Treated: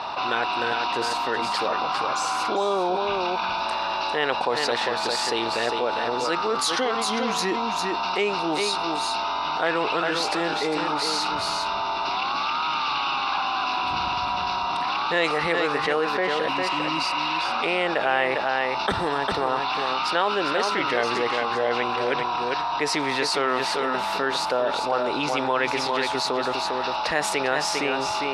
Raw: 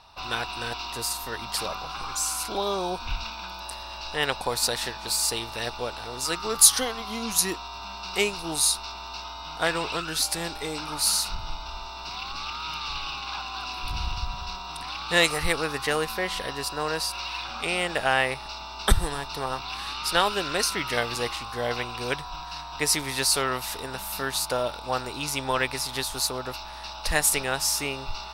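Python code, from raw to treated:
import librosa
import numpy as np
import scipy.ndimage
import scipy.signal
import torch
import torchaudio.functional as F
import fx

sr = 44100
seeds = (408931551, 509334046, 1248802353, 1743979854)

p1 = scipy.signal.sosfilt(scipy.signal.butter(2, 4200.0, 'lowpass', fs=sr, output='sos'), x)
p2 = fx.spec_repair(p1, sr, seeds[0], start_s=16.5, length_s=0.75, low_hz=370.0, high_hz=3000.0, source='after')
p3 = scipy.signal.sosfilt(scipy.signal.butter(2, 270.0, 'highpass', fs=sr, output='sos'), p2)
p4 = fx.high_shelf(p3, sr, hz=2400.0, db=-9.0)
p5 = p4 + fx.echo_single(p4, sr, ms=402, db=-7.5, dry=0)
y = fx.env_flatten(p5, sr, amount_pct=70)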